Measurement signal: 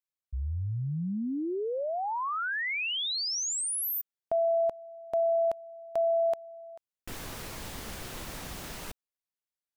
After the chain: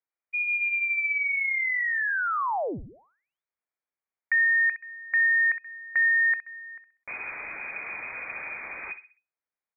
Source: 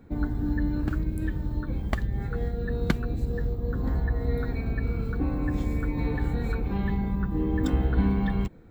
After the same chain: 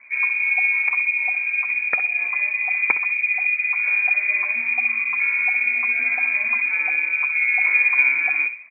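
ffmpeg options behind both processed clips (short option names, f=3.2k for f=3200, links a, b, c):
-filter_complex "[0:a]asplit=2[a][b];[b]adelay=64,lowpass=f=1.3k:p=1,volume=-10dB,asplit=2[c][d];[d]adelay=64,lowpass=f=1.3k:p=1,volume=0.38,asplit=2[e][f];[f]adelay=64,lowpass=f=1.3k:p=1,volume=0.38,asplit=2[g][h];[h]adelay=64,lowpass=f=1.3k:p=1,volume=0.38[i];[a][c][e][g][i]amix=inputs=5:normalize=0,lowpass=f=2.1k:t=q:w=0.5098,lowpass=f=2.1k:t=q:w=0.6013,lowpass=f=2.1k:t=q:w=0.9,lowpass=f=2.1k:t=q:w=2.563,afreqshift=-2500,volume=4.5dB"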